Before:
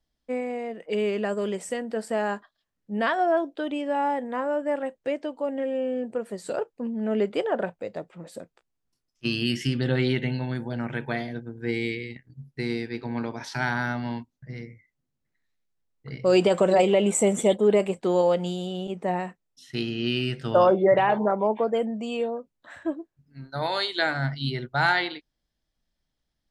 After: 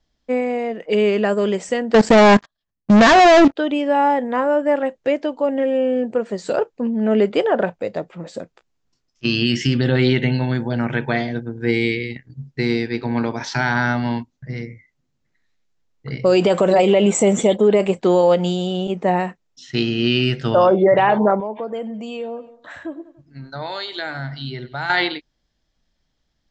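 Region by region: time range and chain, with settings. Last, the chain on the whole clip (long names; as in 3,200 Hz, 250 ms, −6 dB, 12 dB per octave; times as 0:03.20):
0:01.94–0:03.56: low-shelf EQ 190 Hz +11.5 dB + leveller curve on the samples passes 5 + output level in coarse steps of 18 dB
0:21.40–0:24.90: repeating echo 95 ms, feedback 46%, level −22 dB + downward compressor 2 to 1, threshold −42 dBFS
whole clip: Butterworth low-pass 7,500 Hz 72 dB per octave; boost into a limiter +14.5 dB; level −5.5 dB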